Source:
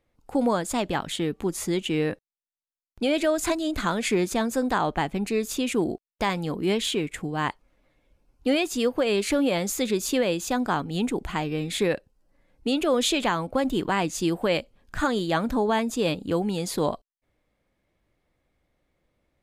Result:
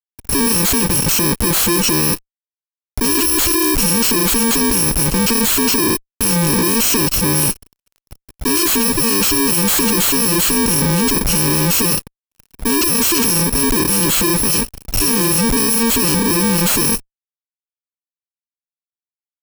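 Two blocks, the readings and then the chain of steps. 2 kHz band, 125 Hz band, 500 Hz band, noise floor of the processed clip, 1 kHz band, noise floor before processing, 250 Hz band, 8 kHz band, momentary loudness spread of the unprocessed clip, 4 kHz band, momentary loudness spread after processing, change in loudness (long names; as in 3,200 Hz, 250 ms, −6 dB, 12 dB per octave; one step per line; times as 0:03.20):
+9.0 dB, +12.0 dB, +3.0 dB, below −85 dBFS, +5.5 dB, below −85 dBFS, +8.5 dB, +20.5 dB, 6 LU, +12.5 dB, 5 LU, +12.5 dB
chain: samples in bit-reversed order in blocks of 64 samples
fuzz pedal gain 50 dB, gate −56 dBFS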